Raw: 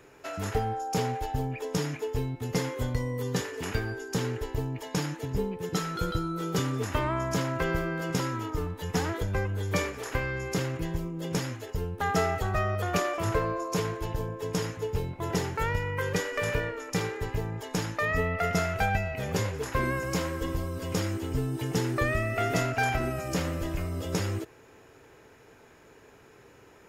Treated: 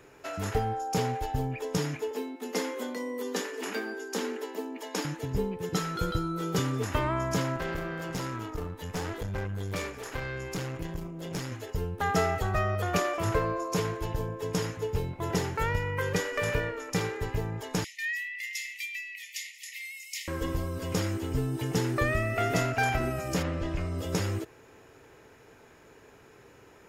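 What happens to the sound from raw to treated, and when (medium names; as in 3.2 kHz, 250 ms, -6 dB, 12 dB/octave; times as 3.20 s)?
2.11–5.05 s: steep high-pass 200 Hz 96 dB/octave
7.56–11.52 s: valve stage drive 28 dB, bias 0.6
17.84–20.28 s: brick-wall FIR high-pass 1.8 kHz
23.42–23.97 s: low-pass 3.5 kHz -> 7.9 kHz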